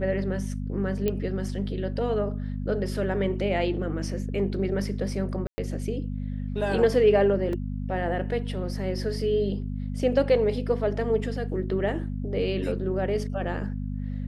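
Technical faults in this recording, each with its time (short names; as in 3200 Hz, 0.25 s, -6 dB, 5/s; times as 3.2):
hum 50 Hz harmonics 5 -31 dBFS
1.08 pop -14 dBFS
5.47–5.58 gap 0.11 s
7.53 gap 2.4 ms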